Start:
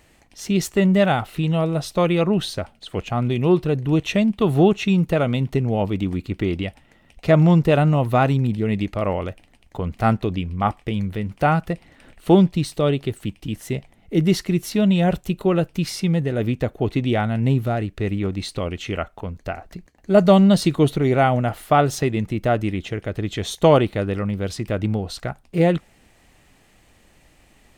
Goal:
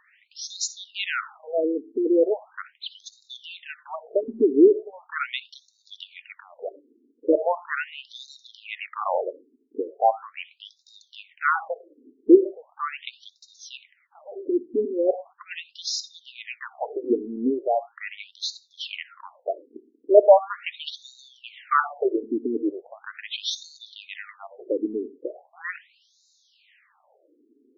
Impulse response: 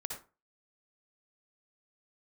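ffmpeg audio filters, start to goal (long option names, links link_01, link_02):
-filter_complex "[0:a]asplit=2[link_01][link_02];[link_02]bass=frequency=250:gain=13,treble=frequency=4000:gain=7[link_03];[1:a]atrim=start_sample=2205,lowshelf=frequency=440:gain=-2[link_04];[link_03][link_04]afir=irnorm=-1:irlink=0,volume=-13dB[link_05];[link_01][link_05]amix=inputs=2:normalize=0,afftfilt=real='re*between(b*sr/1024,310*pow(5200/310,0.5+0.5*sin(2*PI*0.39*pts/sr))/1.41,310*pow(5200/310,0.5+0.5*sin(2*PI*0.39*pts/sr))*1.41)':imag='im*between(b*sr/1024,310*pow(5200/310,0.5+0.5*sin(2*PI*0.39*pts/sr))/1.41,310*pow(5200/310,0.5+0.5*sin(2*PI*0.39*pts/sr))*1.41)':win_size=1024:overlap=0.75,volume=2dB"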